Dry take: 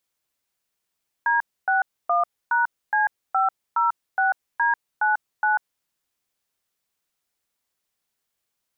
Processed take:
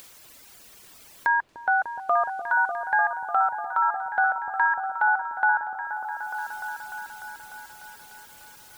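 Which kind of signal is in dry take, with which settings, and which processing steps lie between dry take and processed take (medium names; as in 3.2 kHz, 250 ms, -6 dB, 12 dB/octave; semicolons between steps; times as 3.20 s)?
DTMF "D61#C506D99", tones 143 ms, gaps 274 ms, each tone -20 dBFS
reverb removal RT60 1.1 s; upward compressor, threshold -24 dBFS; on a send: delay with an opening low-pass 298 ms, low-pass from 400 Hz, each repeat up 1 oct, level -3 dB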